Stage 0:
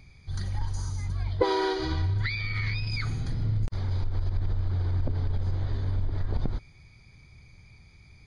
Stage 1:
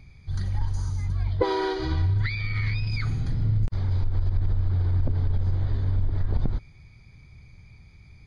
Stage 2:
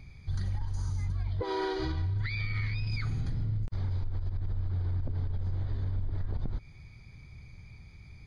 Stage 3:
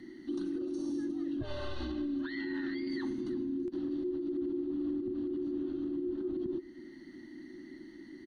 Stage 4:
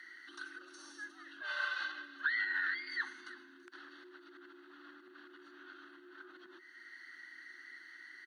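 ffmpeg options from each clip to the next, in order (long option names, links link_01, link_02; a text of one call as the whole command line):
ffmpeg -i in.wav -af "bass=frequency=250:gain=4,treble=frequency=4000:gain=-4" out.wav
ffmpeg -i in.wav -af "alimiter=limit=-18.5dB:level=0:latency=1:release=261,acompressor=threshold=-29dB:ratio=3" out.wav
ffmpeg -i in.wav -af "afreqshift=-380,alimiter=level_in=4dB:limit=-24dB:level=0:latency=1:release=416,volume=-4dB,aecho=1:1:332:0.126" out.wav
ffmpeg -i in.wav -af "highpass=frequency=1500:width_type=q:width=6.2,volume=1.5dB" out.wav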